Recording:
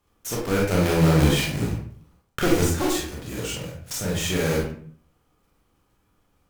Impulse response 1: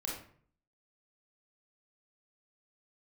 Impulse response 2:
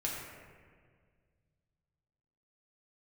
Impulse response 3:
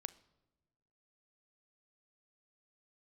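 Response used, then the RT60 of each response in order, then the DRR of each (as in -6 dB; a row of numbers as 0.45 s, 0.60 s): 1; 0.55 s, 1.8 s, no single decay rate; -3.0 dB, -4.0 dB, 14.5 dB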